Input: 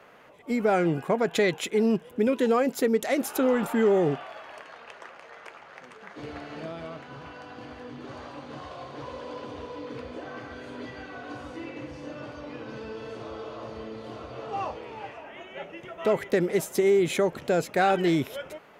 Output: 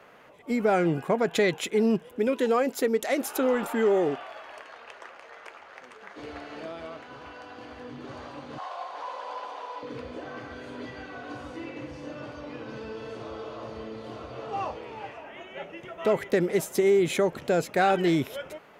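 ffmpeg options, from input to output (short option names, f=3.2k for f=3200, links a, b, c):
-filter_complex "[0:a]asettb=1/sr,asplit=3[a][b][c];[a]atrim=end=2.084[d];[b]atrim=start=2.08:end=7.77,asetpts=PTS-STARTPTS,afade=t=in:d=0.004:c=qsin,afade=t=out:st=5.686:d=0.004:c=qsin,equalizer=f=150:w=1.5:g=-10.5[e];[c]atrim=start=7.766[f];[d][e]acrossfade=d=0.004:c1=hsin:c2=qsin[g];[g][f]acrossfade=d=0.004:c1=qsin:c2=hsin,asettb=1/sr,asplit=3[h][i][j];[h]atrim=end=8.584[k];[i]atrim=start=8.58:end=9.83,asetpts=PTS-STARTPTS,afade=t=in:d=0.004:c=qsin,afade=t=out:st=1.246:d=0.004:c=qsin,highpass=f=810:t=q:w=2.7[l];[j]atrim=start=9.826[m];[k][l]acrossfade=d=0.004:c1=hsin:c2=qsin[n];[n][m]acrossfade=d=0.004:c1=qsin:c2=hsin"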